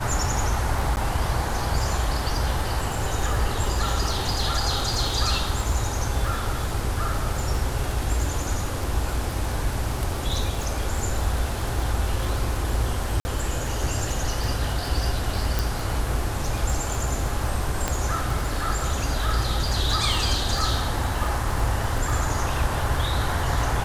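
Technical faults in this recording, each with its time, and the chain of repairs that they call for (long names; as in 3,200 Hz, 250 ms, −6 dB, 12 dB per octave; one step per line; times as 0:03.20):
surface crackle 38 per second −27 dBFS
0:00.96–0:00.97: drop-out 9.4 ms
0:13.20–0:13.25: drop-out 50 ms
0:15.59: click
0:17.88: click −8 dBFS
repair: click removal
repair the gap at 0:00.96, 9.4 ms
repair the gap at 0:13.20, 50 ms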